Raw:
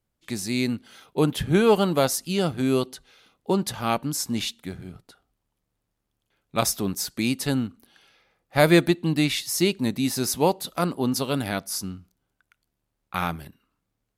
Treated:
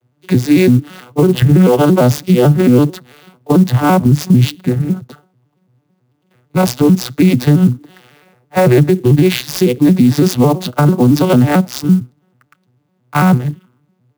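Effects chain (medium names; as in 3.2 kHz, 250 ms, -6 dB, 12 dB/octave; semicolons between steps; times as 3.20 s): vocoder on a broken chord minor triad, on B2, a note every 111 ms; 4.00–4.55 s: bass shelf 210 Hz +11.5 dB; compression, threshold -22 dBFS, peak gain reduction 10 dB; loudness maximiser +24.5 dB; sampling jitter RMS 0.023 ms; trim -1 dB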